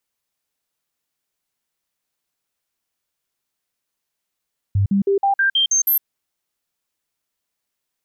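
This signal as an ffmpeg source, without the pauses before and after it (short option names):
-f lavfi -i "aevalsrc='0.211*clip(min(mod(t,0.16),0.11-mod(t,0.16))/0.005,0,1)*sin(2*PI*99*pow(2,floor(t/0.16)/1)*mod(t,0.16))':d=1.28:s=44100"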